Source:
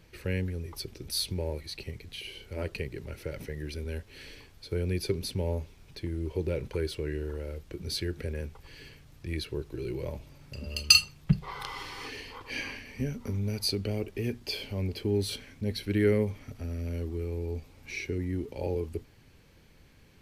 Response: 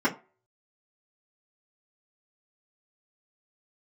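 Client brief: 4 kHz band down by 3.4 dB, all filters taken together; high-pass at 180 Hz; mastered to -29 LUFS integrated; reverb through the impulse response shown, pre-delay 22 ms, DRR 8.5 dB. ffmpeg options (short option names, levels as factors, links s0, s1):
-filter_complex "[0:a]highpass=180,equalizer=f=4000:t=o:g=-4,asplit=2[s0][s1];[1:a]atrim=start_sample=2205,adelay=22[s2];[s1][s2]afir=irnorm=-1:irlink=0,volume=0.0841[s3];[s0][s3]amix=inputs=2:normalize=0,volume=1.78"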